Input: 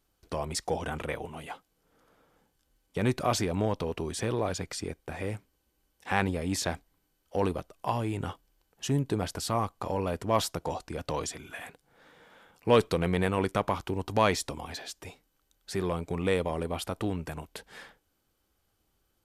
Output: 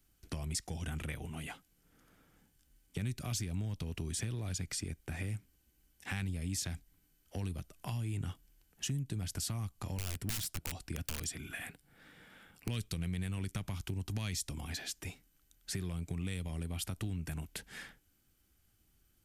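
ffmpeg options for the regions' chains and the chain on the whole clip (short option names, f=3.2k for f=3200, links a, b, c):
-filter_complex "[0:a]asettb=1/sr,asplit=3[a][b][c];[a]atrim=end=9.984[d];[b]atrim=start=9.98:end=12.68,asetpts=PTS-STARTPTS,afade=t=in:d=0.004:c=qsin,afade=t=out:st=2.696:d=0.004:c=qsin,equalizer=f=6.4k:w=5.5:g=-6.5,bandreject=f=980:w=21,aeval=exprs='(mod(15.8*val(0)+1,2)-1)/15.8':c=same[e];[c]atrim=start=12.676[f];[d][e]acrossfade=d=0.004:c1=hsin:c2=qsin[g];[g][f]acrossfade=d=0.004:c1=qsin:c2=hsin,acrossover=split=160|3000[h][i][j];[i]acompressor=threshold=-40dB:ratio=3[k];[h][k][j]amix=inputs=3:normalize=0,equalizer=f=500:t=o:w=1:g=-11,equalizer=f=1k:t=o:w=1:g=-10,equalizer=f=4k:t=o:w=1:g=-5,acompressor=threshold=-40dB:ratio=3,volume=4.5dB"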